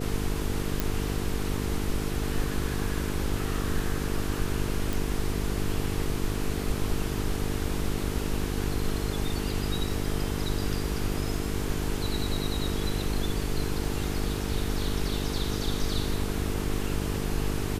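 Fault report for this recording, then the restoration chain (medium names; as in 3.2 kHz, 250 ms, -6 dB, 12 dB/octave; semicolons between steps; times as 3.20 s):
buzz 50 Hz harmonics 9 -32 dBFS
0.80 s: pop
4.93 s: pop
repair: de-click; de-hum 50 Hz, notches 9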